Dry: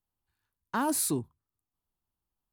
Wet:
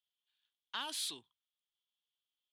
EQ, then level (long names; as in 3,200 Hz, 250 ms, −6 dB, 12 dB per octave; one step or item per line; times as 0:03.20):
resonant band-pass 3,300 Hz, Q 8.8
+15.0 dB